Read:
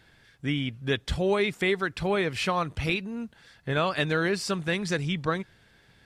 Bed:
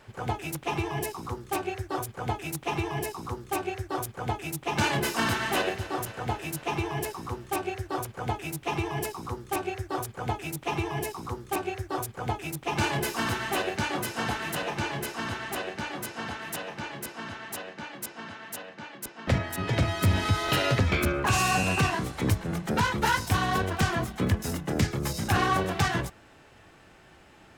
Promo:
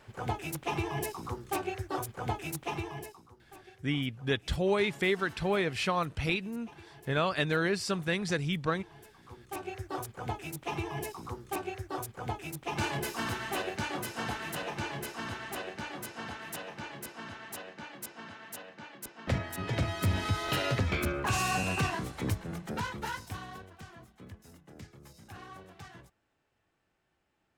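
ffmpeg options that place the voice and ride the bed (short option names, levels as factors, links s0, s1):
-filter_complex "[0:a]adelay=3400,volume=0.708[s0];[1:a]volume=5.31,afade=t=out:st=2.5:d=0.77:silence=0.1,afade=t=in:st=9.19:d=0.64:silence=0.133352,afade=t=out:st=22.08:d=1.62:silence=0.125893[s1];[s0][s1]amix=inputs=2:normalize=0"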